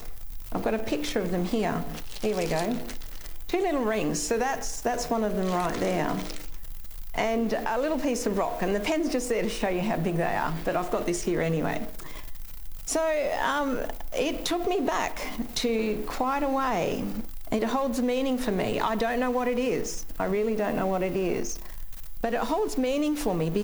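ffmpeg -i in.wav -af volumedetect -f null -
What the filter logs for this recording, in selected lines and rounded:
mean_volume: -27.3 dB
max_volume: -12.9 dB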